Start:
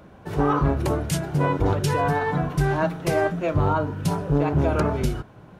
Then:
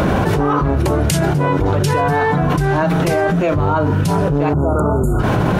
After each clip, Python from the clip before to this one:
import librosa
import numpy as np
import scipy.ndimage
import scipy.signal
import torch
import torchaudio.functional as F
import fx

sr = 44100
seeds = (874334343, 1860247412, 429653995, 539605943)

y = fx.spec_erase(x, sr, start_s=4.53, length_s=0.67, low_hz=1500.0, high_hz=6700.0)
y = fx.env_flatten(y, sr, amount_pct=100)
y = y * librosa.db_to_amplitude(2.0)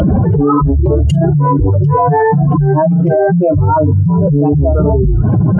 y = fx.spec_expand(x, sr, power=2.7)
y = fx.peak_eq(y, sr, hz=3100.0, db=11.5, octaves=0.29)
y = y * librosa.db_to_amplitude(5.5)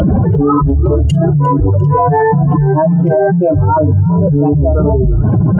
y = fx.echo_feedback(x, sr, ms=350, feedback_pct=40, wet_db=-20.5)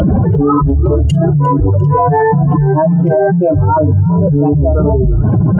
y = x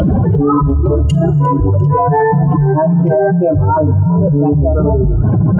y = fx.rev_plate(x, sr, seeds[0], rt60_s=2.1, hf_ratio=0.8, predelay_ms=0, drr_db=17.0)
y = y * librosa.db_to_amplitude(-1.0)